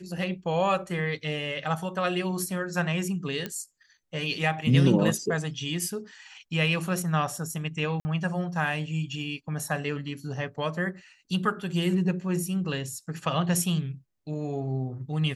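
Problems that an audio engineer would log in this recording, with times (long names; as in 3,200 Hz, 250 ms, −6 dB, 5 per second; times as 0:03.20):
0:03.46: click −17 dBFS
0:08.00–0:08.05: drop-out 50 ms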